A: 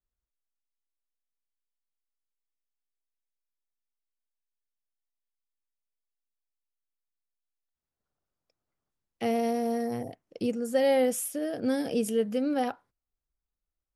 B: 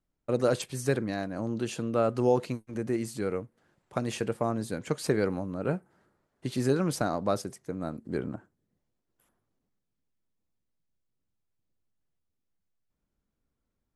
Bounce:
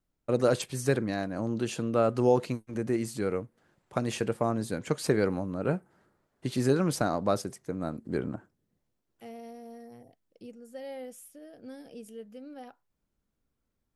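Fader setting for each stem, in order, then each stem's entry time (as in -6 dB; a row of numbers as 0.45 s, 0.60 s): -17.0 dB, +1.0 dB; 0.00 s, 0.00 s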